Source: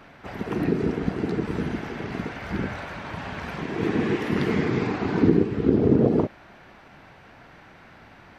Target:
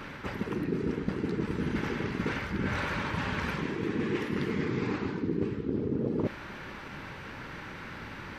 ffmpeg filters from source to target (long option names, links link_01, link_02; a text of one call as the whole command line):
ffmpeg -i in.wav -af "equalizer=frequency=700:width=5.3:gain=-15,areverse,acompressor=threshold=-36dB:ratio=8,areverse,volume=8dB" out.wav